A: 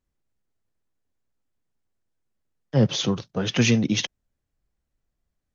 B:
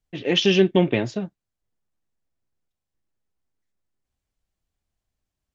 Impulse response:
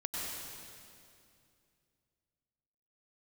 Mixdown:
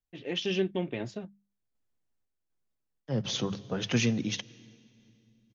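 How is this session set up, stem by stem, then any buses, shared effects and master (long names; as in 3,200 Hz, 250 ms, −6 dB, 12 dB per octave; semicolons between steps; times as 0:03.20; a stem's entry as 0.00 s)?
−5.0 dB, 0.35 s, send −22.5 dB, no processing
−9.0 dB, 0.00 s, no send, no processing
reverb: on, RT60 2.5 s, pre-delay 88 ms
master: mains-hum notches 50/100/150/200 Hz; sample-and-hold tremolo 4 Hz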